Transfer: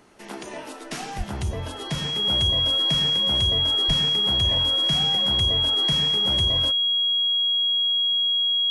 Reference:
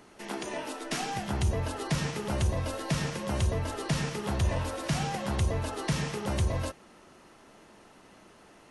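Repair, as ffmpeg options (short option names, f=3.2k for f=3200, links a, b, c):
-filter_complex "[0:a]bandreject=f=3.3k:w=30,asplit=3[a][b][c];[a]afade=t=out:st=1.17:d=0.02[d];[b]highpass=f=140:w=0.5412,highpass=f=140:w=1.3066,afade=t=in:st=1.17:d=0.02,afade=t=out:st=1.29:d=0.02[e];[c]afade=t=in:st=1.29:d=0.02[f];[d][e][f]amix=inputs=3:normalize=0,asplit=3[g][h][i];[g]afade=t=out:st=3.87:d=0.02[j];[h]highpass=f=140:w=0.5412,highpass=f=140:w=1.3066,afade=t=in:st=3.87:d=0.02,afade=t=out:st=3.99:d=0.02[k];[i]afade=t=in:st=3.99:d=0.02[l];[j][k][l]amix=inputs=3:normalize=0"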